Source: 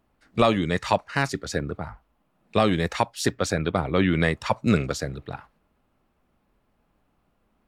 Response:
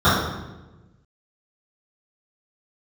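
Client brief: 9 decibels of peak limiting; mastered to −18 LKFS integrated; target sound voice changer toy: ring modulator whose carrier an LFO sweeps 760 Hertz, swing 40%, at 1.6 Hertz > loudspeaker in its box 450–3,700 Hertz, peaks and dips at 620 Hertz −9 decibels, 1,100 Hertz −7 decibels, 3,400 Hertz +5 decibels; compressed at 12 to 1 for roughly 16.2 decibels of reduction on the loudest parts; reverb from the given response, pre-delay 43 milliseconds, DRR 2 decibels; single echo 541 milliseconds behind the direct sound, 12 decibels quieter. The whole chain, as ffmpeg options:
-filter_complex "[0:a]acompressor=threshold=-31dB:ratio=12,alimiter=level_in=1dB:limit=-24dB:level=0:latency=1,volume=-1dB,aecho=1:1:541:0.251,asplit=2[link_01][link_02];[1:a]atrim=start_sample=2205,adelay=43[link_03];[link_02][link_03]afir=irnorm=-1:irlink=0,volume=-27dB[link_04];[link_01][link_04]amix=inputs=2:normalize=0,aeval=exprs='val(0)*sin(2*PI*760*n/s+760*0.4/1.6*sin(2*PI*1.6*n/s))':channel_layout=same,highpass=450,equalizer=frequency=620:width_type=q:width=4:gain=-9,equalizer=frequency=1100:width_type=q:width=4:gain=-7,equalizer=frequency=3400:width_type=q:width=4:gain=5,lowpass=frequency=3700:width=0.5412,lowpass=frequency=3700:width=1.3066,volume=23dB"

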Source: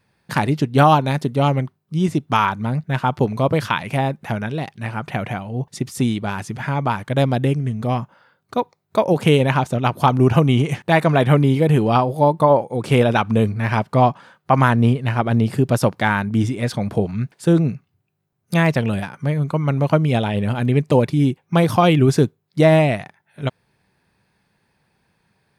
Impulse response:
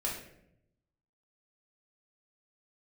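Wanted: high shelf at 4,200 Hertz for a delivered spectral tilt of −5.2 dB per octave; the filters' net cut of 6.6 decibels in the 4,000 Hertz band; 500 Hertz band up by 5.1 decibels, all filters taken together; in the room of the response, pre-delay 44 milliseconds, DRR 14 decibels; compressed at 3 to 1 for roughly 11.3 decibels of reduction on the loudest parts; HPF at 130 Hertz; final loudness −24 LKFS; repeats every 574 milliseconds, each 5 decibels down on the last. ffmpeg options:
-filter_complex "[0:a]highpass=130,equalizer=frequency=500:width_type=o:gain=6.5,equalizer=frequency=4000:width_type=o:gain=-8,highshelf=frequency=4200:gain=-3,acompressor=threshold=-22dB:ratio=3,aecho=1:1:574|1148|1722|2296|2870|3444|4018:0.562|0.315|0.176|0.0988|0.0553|0.031|0.0173,asplit=2[link_01][link_02];[1:a]atrim=start_sample=2205,adelay=44[link_03];[link_02][link_03]afir=irnorm=-1:irlink=0,volume=-18dB[link_04];[link_01][link_04]amix=inputs=2:normalize=0"

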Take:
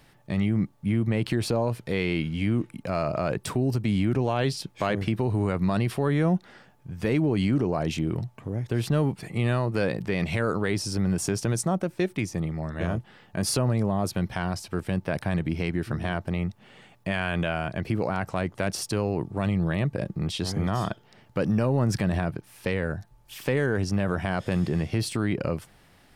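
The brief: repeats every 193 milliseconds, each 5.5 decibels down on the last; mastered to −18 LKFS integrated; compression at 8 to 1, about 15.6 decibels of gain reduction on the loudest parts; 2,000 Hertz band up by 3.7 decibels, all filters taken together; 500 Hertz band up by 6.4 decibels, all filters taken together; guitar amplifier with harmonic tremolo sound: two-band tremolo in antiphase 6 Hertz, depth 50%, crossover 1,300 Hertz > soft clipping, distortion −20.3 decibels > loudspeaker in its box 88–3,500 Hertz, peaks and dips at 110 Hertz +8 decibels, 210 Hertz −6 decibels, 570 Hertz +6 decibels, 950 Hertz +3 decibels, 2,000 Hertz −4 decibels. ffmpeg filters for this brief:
ffmpeg -i in.wav -filter_complex "[0:a]equalizer=frequency=500:width_type=o:gain=4,equalizer=frequency=2000:width_type=o:gain=6.5,acompressor=threshold=-35dB:ratio=8,aecho=1:1:193|386|579|772|965|1158|1351:0.531|0.281|0.149|0.079|0.0419|0.0222|0.0118,acrossover=split=1300[link_01][link_02];[link_01]aeval=exprs='val(0)*(1-0.5/2+0.5/2*cos(2*PI*6*n/s))':channel_layout=same[link_03];[link_02]aeval=exprs='val(0)*(1-0.5/2-0.5/2*cos(2*PI*6*n/s))':channel_layout=same[link_04];[link_03][link_04]amix=inputs=2:normalize=0,asoftclip=threshold=-28.5dB,highpass=88,equalizer=frequency=110:width_type=q:width=4:gain=8,equalizer=frequency=210:width_type=q:width=4:gain=-6,equalizer=frequency=570:width_type=q:width=4:gain=6,equalizer=frequency=950:width_type=q:width=4:gain=3,equalizer=frequency=2000:width_type=q:width=4:gain=-4,lowpass=frequency=3500:width=0.5412,lowpass=frequency=3500:width=1.3066,volume=22.5dB" out.wav

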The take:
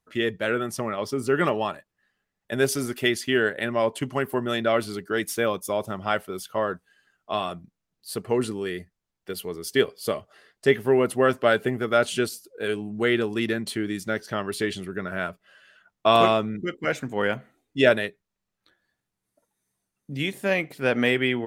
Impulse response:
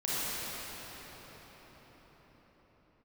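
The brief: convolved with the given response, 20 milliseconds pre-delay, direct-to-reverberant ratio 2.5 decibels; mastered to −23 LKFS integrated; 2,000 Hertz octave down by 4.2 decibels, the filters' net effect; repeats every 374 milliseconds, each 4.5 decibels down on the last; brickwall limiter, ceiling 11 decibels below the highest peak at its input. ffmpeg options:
-filter_complex "[0:a]equalizer=frequency=2000:width_type=o:gain=-5.5,alimiter=limit=-16dB:level=0:latency=1,aecho=1:1:374|748|1122|1496|1870|2244|2618|2992|3366:0.596|0.357|0.214|0.129|0.0772|0.0463|0.0278|0.0167|0.01,asplit=2[link_01][link_02];[1:a]atrim=start_sample=2205,adelay=20[link_03];[link_02][link_03]afir=irnorm=-1:irlink=0,volume=-12dB[link_04];[link_01][link_04]amix=inputs=2:normalize=0,volume=3dB"

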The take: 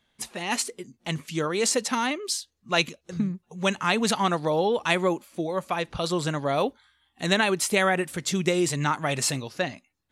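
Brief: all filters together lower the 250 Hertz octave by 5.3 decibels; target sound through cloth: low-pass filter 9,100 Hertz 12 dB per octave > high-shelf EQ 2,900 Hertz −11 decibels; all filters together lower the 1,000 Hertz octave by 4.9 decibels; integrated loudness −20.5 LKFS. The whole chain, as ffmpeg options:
ffmpeg -i in.wav -af "lowpass=9100,equalizer=frequency=250:width_type=o:gain=-8,equalizer=frequency=1000:width_type=o:gain=-4.5,highshelf=frequency=2900:gain=-11,volume=10.5dB" out.wav

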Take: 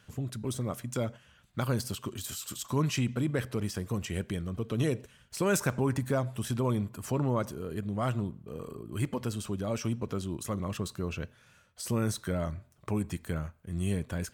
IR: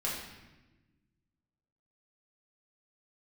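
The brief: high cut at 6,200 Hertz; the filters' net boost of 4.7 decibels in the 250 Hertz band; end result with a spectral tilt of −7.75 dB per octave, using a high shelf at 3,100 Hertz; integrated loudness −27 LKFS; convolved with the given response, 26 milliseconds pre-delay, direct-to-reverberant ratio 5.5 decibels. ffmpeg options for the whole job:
-filter_complex "[0:a]lowpass=6200,equalizer=frequency=250:width_type=o:gain=6,highshelf=frequency=3100:gain=-8,asplit=2[link_01][link_02];[1:a]atrim=start_sample=2205,adelay=26[link_03];[link_02][link_03]afir=irnorm=-1:irlink=0,volume=-10.5dB[link_04];[link_01][link_04]amix=inputs=2:normalize=0,volume=2.5dB"

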